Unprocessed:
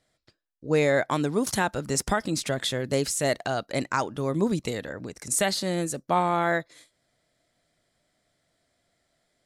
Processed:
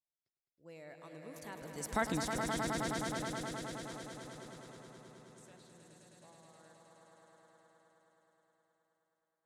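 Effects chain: Doppler pass-by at 2.07 s, 25 m/s, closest 1.5 m; echo with a slow build-up 105 ms, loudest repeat 5, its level -6 dB; trim -3.5 dB

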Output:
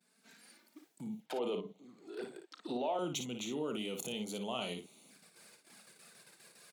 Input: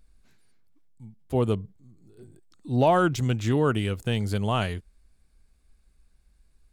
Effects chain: gate -59 dBFS, range -18 dB; level rider gain up to 17 dB; 1.20–2.99 s: three-band isolator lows -19 dB, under 340 Hz, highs -17 dB, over 4.6 kHz; touch-sensitive flanger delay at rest 5.8 ms, full sweep at -29.5 dBFS; peak limiter -31.5 dBFS, peak gain reduction 28 dB; steep high-pass 170 Hz 36 dB/octave; bass shelf 410 Hz -7.5 dB; band-stop 1.1 kHz, Q 20; on a send: early reflections 33 ms -13.5 dB, 56 ms -7 dB; on the sum: trim +5.5 dB

